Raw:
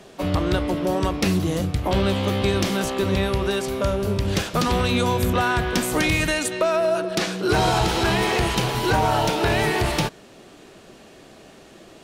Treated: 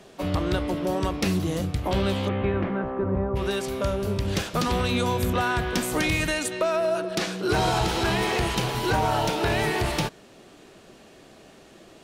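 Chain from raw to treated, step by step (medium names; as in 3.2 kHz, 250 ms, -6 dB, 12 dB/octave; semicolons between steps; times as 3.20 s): 2.27–3.35 s: low-pass 2.7 kHz -> 1.1 kHz 24 dB/octave; trim -3.5 dB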